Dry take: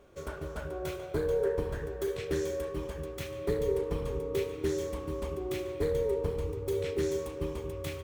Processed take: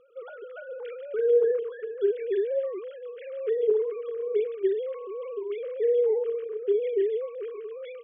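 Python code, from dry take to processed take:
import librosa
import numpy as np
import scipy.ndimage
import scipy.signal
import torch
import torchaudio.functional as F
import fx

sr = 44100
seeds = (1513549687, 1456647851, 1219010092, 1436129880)

y = fx.sine_speech(x, sr)
y = y * librosa.db_to_amplitude(5.0)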